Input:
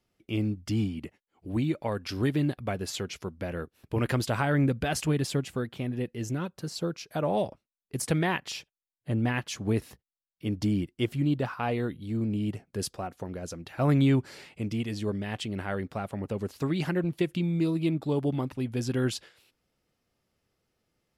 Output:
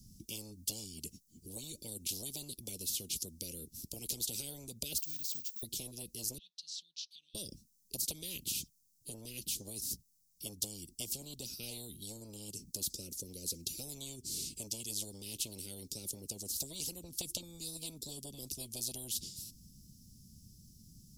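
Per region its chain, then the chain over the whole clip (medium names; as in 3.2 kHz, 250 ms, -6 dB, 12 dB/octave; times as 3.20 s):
4.98–5.63 s: block-companded coder 5-bit + ladder band-pass 2 kHz, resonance 50% + careless resampling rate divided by 2×, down filtered, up zero stuff
6.38–7.35 s: compression 3:1, threshold -37 dBFS + Butterworth band-pass 3.3 kHz, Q 2.5
whole clip: elliptic band-stop 210–5600 Hz, stop band 60 dB; compression, threshold -35 dBFS; spectrum-flattening compressor 10:1; trim +9 dB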